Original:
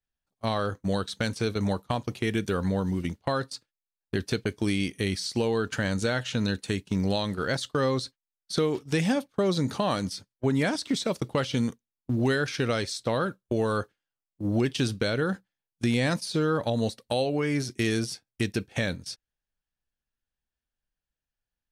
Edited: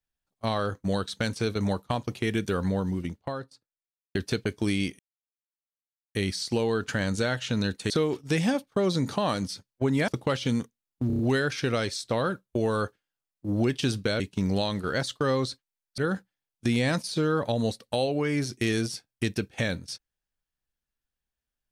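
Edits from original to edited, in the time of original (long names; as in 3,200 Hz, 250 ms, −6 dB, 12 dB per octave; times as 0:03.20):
0:02.58–0:04.15: fade out and dull
0:04.99: splice in silence 1.16 s
0:06.74–0:08.52: move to 0:15.16
0:10.70–0:11.16: remove
0:12.15: stutter 0.03 s, 5 plays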